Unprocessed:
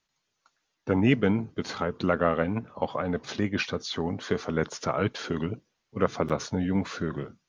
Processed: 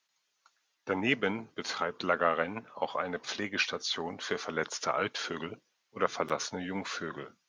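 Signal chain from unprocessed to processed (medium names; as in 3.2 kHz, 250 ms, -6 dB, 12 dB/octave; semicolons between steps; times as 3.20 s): high-pass 1 kHz 6 dB/octave; trim +2 dB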